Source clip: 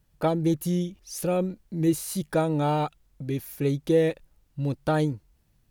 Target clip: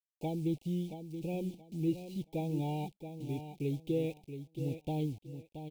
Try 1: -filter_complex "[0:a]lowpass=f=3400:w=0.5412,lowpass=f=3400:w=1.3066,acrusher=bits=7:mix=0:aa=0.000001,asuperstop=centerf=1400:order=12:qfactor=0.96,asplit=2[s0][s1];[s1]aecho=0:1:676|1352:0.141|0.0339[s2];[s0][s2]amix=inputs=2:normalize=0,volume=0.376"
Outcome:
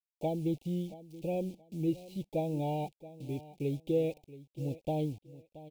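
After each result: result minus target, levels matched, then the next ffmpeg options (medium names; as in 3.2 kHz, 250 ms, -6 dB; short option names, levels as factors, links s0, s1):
echo-to-direct -7.5 dB; 500 Hz band +2.5 dB
-filter_complex "[0:a]lowpass=f=3400:w=0.5412,lowpass=f=3400:w=1.3066,acrusher=bits=7:mix=0:aa=0.000001,asuperstop=centerf=1400:order=12:qfactor=0.96,asplit=2[s0][s1];[s1]aecho=0:1:676|1352|2028:0.335|0.0804|0.0193[s2];[s0][s2]amix=inputs=2:normalize=0,volume=0.376"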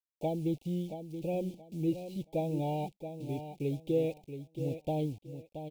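500 Hz band +3.0 dB
-filter_complex "[0:a]lowpass=f=3400:w=0.5412,lowpass=f=3400:w=1.3066,equalizer=f=600:w=2.5:g=-10.5,acrusher=bits=7:mix=0:aa=0.000001,asuperstop=centerf=1400:order=12:qfactor=0.96,asplit=2[s0][s1];[s1]aecho=0:1:676|1352|2028:0.335|0.0804|0.0193[s2];[s0][s2]amix=inputs=2:normalize=0,volume=0.376"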